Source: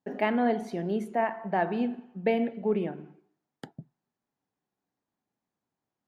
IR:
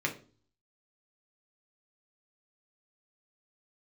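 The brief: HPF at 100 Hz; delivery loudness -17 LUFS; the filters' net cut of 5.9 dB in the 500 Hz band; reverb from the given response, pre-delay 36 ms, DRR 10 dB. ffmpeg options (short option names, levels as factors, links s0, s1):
-filter_complex "[0:a]highpass=100,equalizer=f=500:t=o:g=-8,asplit=2[s0][s1];[1:a]atrim=start_sample=2205,adelay=36[s2];[s1][s2]afir=irnorm=-1:irlink=0,volume=0.141[s3];[s0][s3]amix=inputs=2:normalize=0,volume=5.62"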